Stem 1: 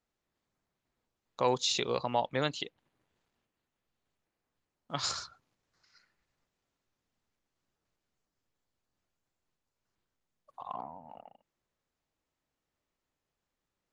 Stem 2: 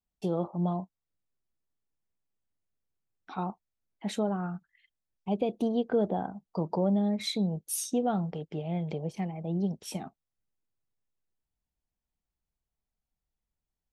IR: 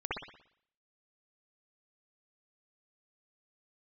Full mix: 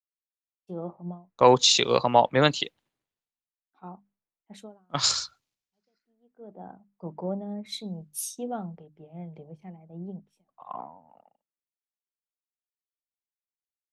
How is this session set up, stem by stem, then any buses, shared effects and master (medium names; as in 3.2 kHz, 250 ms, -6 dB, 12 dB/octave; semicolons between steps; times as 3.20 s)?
+2.5 dB, 0.00 s, no send, none
-6.0 dB, 0.45 s, no send, hum notches 50/100/150/200/250/300 Hz; auto duck -22 dB, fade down 0.30 s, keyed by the first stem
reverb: none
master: three bands expanded up and down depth 100%